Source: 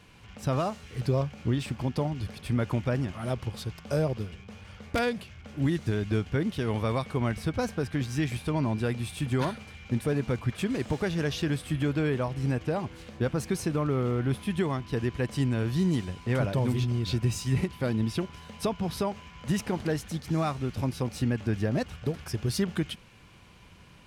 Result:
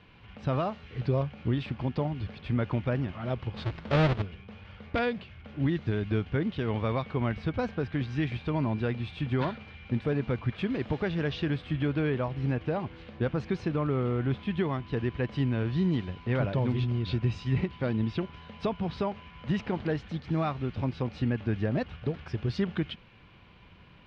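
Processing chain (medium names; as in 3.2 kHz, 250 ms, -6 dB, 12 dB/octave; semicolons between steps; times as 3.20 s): 3.56–4.22 s: square wave that keeps the level; low-pass 3.8 kHz 24 dB/octave; trim -1 dB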